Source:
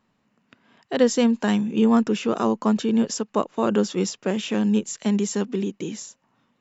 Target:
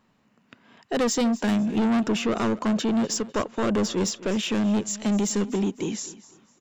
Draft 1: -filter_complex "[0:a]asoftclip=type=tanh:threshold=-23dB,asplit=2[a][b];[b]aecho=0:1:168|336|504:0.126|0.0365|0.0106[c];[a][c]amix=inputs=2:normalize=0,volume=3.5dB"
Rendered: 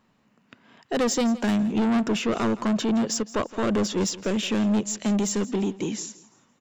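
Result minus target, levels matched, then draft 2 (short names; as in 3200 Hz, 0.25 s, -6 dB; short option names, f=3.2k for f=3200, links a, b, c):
echo 82 ms early
-filter_complex "[0:a]asoftclip=type=tanh:threshold=-23dB,asplit=2[a][b];[b]aecho=0:1:250|500|750:0.126|0.0365|0.0106[c];[a][c]amix=inputs=2:normalize=0,volume=3.5dB"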